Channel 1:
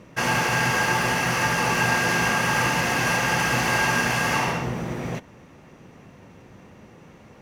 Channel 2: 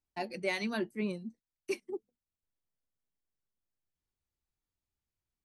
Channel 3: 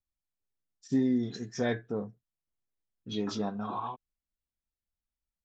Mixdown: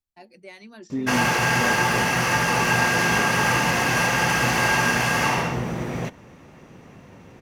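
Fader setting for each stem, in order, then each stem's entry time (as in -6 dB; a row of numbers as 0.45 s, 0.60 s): +1.5 dB, -10.0 dB, -1.0 dB; 0.90 s, 0.00 s, 0.00 s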